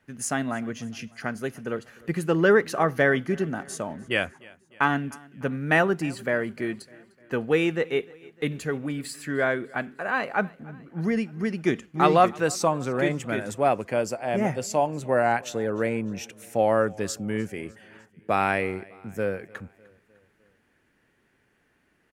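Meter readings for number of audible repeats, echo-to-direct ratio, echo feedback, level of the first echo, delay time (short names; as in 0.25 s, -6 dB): 3, -22.0 dB, 55%, -23.5 dB, 0.302 s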